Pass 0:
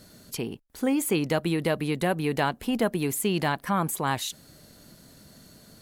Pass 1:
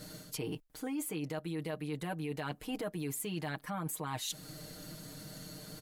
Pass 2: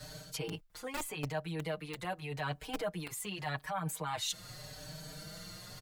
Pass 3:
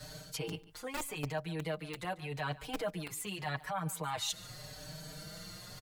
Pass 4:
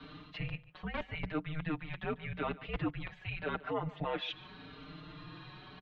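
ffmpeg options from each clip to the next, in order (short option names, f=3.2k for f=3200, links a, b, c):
-af "aecho=1:1:6.5:0.86,alimiter=limit=-20dB:level=0:latency=1:release=350,areverse,acompressor=threshold=-37dB:ratio=6,areverse,volume=1.5dB"
-filter_complex "[0:a]equalizer=f=12k:w=1:g=-8.5,acrossover=split=180|440|7500[a][b][c][d];[b]acrusher=bits=3:dc=4:mix=0:aa=0.000001[e];[a][e][c][d]amix=inputs=4:normalize=0,asplit=2[f][g];[g]adelay=4.9,afreqshift=0.84[h];[f][h]amix=inputs=2:normalize=1,volume=6.5dB"
-af "aecho=1:1:144:0.112"
-af "highpass=f=170:t=q:w=0.5412,highpass=f=170:t=q:w=1.307,lowpass=f=3.6k:t=q:w=0.5176,lowpass=f=3.6k:t=q:w=0.7071,lowpass=f=3.6k:t=q:w=1.932,afreqshift=-320,volume=2dB"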